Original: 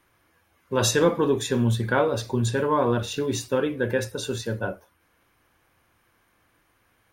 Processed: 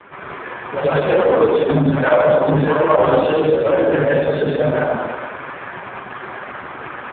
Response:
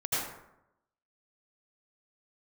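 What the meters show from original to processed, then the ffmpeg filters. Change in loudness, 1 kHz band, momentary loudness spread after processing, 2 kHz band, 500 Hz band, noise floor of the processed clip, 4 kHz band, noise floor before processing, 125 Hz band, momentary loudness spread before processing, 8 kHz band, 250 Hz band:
+8.5 dB, +10.0 dB, 16 LU, +8.5 dB, +11.0 dB, −33 dBFS, −1.0 dB, −67 dBFS, +5.0 dB, 9 LU, below −40 dB, +7.0 dB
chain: -filter_complex "[0:a]aeval=exprs='val(0)+0.5*0.015*sgn(val(0))':channel_layout=same,aecho=1:1:131|262|393|524|655:0.447|0.179|0.0715|0.0286|0.0114,asoftclip=type=tanh:threshold=-19dB[link_01];[1:a]atrim=start_sample=2205,afade=type=out:start_time=0.31:duration=0.01,atrim=end_sample=14112,asetrate=33075,aresample=44100[link_02];[link_01][link_02]afir=irnorm=-1:irlink=0,adynamicsmooth=sensitivity=4:basefreq=1500,afreqshift=36,acontrast=54,asplit=2[link_03][link_04];[link_04]highpass=frequency=720:poles=1,volume=14dB,asoftclip=type=tanh:threshold=0dB[link_05];[link_03][link_05]amix=inputs=2:normalize=0,lowpass=frequency=1600:poles=1,volume=-6dB,volume=-3dB" -ar 8000 -c:a libopencore_amrnb -b:a 4750

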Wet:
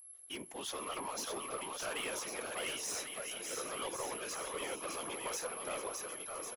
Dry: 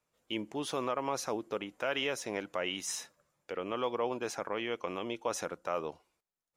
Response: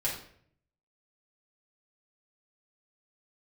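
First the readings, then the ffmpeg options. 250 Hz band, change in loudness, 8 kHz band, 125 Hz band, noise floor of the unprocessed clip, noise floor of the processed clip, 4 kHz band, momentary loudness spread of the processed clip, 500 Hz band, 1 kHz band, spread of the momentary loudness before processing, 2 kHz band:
−9.5 dB, −3.5 dB, +3.5 dB, −9.0 dB, below −85 dBFS, −54 dBFS, −2.0 dB, 4 LU, −7.0 dB, −4.5 dB, 6 LU, −3.0 dB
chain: -af "highpass=frequency=890:poles=1,asoftclip=type=tanh:threshold=-37dB,aeval=exprs='val(0)+0.00224*sin(2*PI*11000*n/s)':channel_layout=same,aecho=1:1:610|1098|1488|1801|2051:0.631|0.398|0.251|0.158|0.1,afftfilt=real='hypot(re,im)*cos(2*PI*random(0))':imag='hypot(re,im)*sin(2*PI*random(1))':win_size=512:overlap=0.75,volume=7dB"

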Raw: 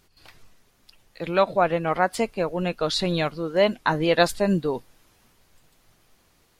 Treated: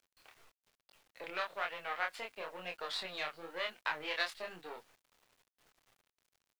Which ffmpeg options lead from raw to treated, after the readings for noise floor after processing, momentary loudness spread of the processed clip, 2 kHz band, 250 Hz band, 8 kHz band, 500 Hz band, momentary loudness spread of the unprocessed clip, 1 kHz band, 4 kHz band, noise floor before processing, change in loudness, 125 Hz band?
below −85 dBFS, 10 LU, −9.0 dB, −29.5 dB, −18.0 dB, −22.0 dB, 6 LU, −16.0 dB, −11.0 dB, −63 dBFS, −16.0 dB, −34.0 dB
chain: -filter_complex "[0:a]aeval=exprs='if(lt(val(0),0),0.251*val(0),val(0))':channel_layout=same,acrossover=split=1500[link_01][link_02];[link_01]acompressor=threshold=-34dB:ratio=6[link_03];[link_03][link_02]amix=inputs=2:normalize=0,aeval=exprs='0.251*(cos(1*acos(clip(val(0)/0.251,-1,1)))-cos(1*PI/2))+0.00794*(cos(8*acos(clip(val(0)/0.251,-1,1)))-cos(8*PI/2))':channel_layout=same,flanger=delay=22.5:depth=4.7:speed=1.1,acrossover=split=430 3700:gain=0.141 1 0.178[link_04][link_05][link_06];[link_04][link_05][link_06]amix=inputs=3:normalize=0,acrusher=bits=10:mix=0:aa=0.000001"

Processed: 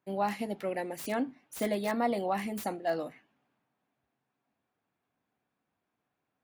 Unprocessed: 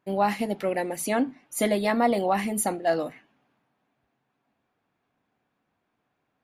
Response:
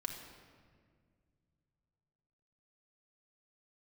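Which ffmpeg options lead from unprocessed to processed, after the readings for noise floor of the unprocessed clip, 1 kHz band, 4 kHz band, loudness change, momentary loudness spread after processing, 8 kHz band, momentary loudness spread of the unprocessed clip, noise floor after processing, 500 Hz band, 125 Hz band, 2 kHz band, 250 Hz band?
−78 dBFS, −7.0 dB, −7.5 dB, −7.5 dB, 6 LU, −13.5 dB, 6 LU, −84 dBFS, −7.0 dB, −7.0 dB, −7.5 dB, −7.0 dB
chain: -filter_complex "[0:a]highpass=41,acrossover=split=490|2100[link_01][link_02][link_03];[link_03]aeval=exprs='(mod(29.9*val(0)+1,2)-1)/29.9':channel_layout=same[link_04];[link_01][link_02][link_04]amix=inputs=3:normalize=0,volume=-7dB"

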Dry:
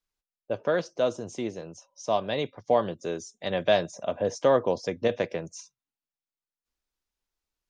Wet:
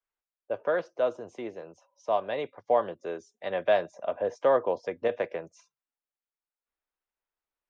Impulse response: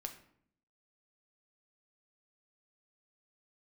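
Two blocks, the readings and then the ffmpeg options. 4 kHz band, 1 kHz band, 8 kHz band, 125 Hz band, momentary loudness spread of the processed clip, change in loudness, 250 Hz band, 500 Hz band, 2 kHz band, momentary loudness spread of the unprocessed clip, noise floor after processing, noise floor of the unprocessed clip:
−9.5 dB, −0.5 dB, below −15 dB, −12.0 dB, 14 LU, −1.5 dB, −7.5 dB, −1.5 dB, −1.5 dB, 12 LU, below −85 dBFS, below −85 dBFS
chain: -filter_complex "[0:a]acrossover=split=370 2600:gain=0.224 1 0.126[link_01][link_02][link_03];[link_01][link_02][link_03]amix=inputs=3:normalize=0"

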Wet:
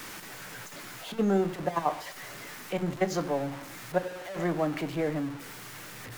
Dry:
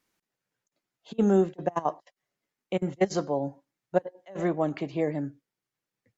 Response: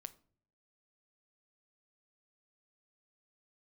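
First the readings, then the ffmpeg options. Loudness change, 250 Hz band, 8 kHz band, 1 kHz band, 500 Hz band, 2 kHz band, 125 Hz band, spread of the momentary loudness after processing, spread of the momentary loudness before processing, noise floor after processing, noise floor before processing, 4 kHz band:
−3.5 dB, −2.5 dB, can't be measured, +0.5 dB, −2.5 dB, +5.0 dB, −1.0 dB, 14 LU, 13 LU, −44 dBFS, below −85 dBFS, +6.0 dB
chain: -filter_complex "[0:a]aeval=exprs='val(0)+0.5*0.0211*sgn(val(0))':channel_layout=same,acrossover=split=330|1100|2000[link_01][link_02][link_03][link_04];[link_03]acontrast=87[link_05];[link_01][link_02][link_05][link_04]amix=inputs=4:normalize=0[link_06];[1:a]atrim=start_sample=2205,asetrate=43218,aresample=44100[link_07];[link_06][link_07]afir=irnorm=-1:irlink=0,volume=1.5dB"

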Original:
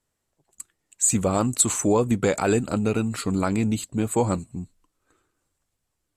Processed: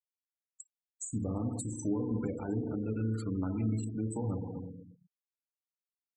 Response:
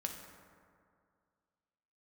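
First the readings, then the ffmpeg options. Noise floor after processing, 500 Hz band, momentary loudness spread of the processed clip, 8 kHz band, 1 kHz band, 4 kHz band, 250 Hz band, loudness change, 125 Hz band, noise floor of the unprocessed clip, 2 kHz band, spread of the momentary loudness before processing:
below −85 dBFS, −15.5 dB, 17 LU, −21.0 dB, −19.5 dB, below −25 dB, −9.5 dB, −12.0 dB, −7.0 dB, −79 dBFS, −22.0 dB, 6 LU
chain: -filter_complex "[1:a]atrim=start_sample=2205,asetrate=70560,aresample=44100[link_01];[0:a][link_01]afir=irnorm=-1:irlink=0,acrossover=split=270[link_02][link_03];[link_03]acompressor=threshold=-35dB:ratio=10[link_04];[link_02][link_04]amix=inputs=2:normalize=0,afftfilt=real='re*gte(hypot(re,im),0.0178)':imag='im*gte(hypot(re,im),0.0178)':win_size=1024:overlap=0.75,volume=-4dB"

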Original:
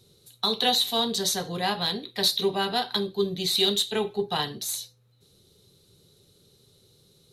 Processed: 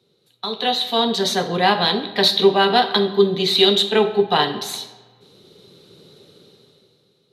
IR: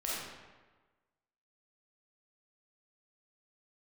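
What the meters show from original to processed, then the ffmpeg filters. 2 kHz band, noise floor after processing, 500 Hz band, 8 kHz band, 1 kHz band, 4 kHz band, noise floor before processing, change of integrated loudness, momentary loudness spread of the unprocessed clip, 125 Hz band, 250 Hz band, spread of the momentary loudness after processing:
+10.5 dB, −63 dBFS, +11.0 dB, −2.0 dB, +10.5 dB, +6.0 dB, −62 dBFS, +8.0 dB, 7 LU, +7.5 dB, +9.0 dB, 13 LU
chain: -filter_complex "[0:a]acrossover=split=160 4000:gain=0.1 1 0.158[link_01][link_02][link_03];[link_01][link_02][link_03]amix=inputs=3:normalize=0,dynaudnorm=framelen=160:gausssize=11:maxgain=16dB,asplit=2[link_04][link_05];[1:a]atrim=start_sample=2205[link_06];[link_05][link_06]afir=irnorm=-1:irlink=0,volume=-14dB[link_07];[link_04][link_07]amix=inputs=2:normalize=0,volume=-1.5dB"

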